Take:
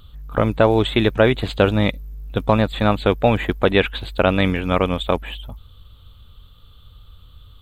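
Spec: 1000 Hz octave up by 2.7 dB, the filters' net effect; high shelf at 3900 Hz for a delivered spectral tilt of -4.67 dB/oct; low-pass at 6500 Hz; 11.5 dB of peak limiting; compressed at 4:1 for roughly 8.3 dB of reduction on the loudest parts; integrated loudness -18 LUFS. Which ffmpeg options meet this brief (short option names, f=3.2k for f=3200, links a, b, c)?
-af "lowpass=6.5k,equalizer=f=1k:t=o:g=4,highshelf=f=3.9k:g=-5.5,acompressor=threshold=-19dB:ratio=4,volume=12.5dB,alimiter=limit=-5dB:level=0:latency=1"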